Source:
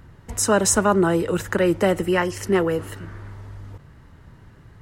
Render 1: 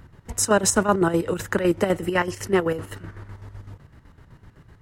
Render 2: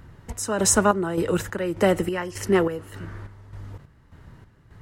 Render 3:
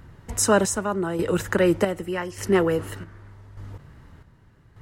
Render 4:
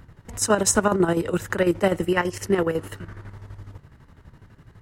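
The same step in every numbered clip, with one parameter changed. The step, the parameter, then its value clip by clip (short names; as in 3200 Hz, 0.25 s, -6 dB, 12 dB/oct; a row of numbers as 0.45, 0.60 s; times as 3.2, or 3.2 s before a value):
chopper, rate: 7.9, 1.7, 0.84, 12 Hz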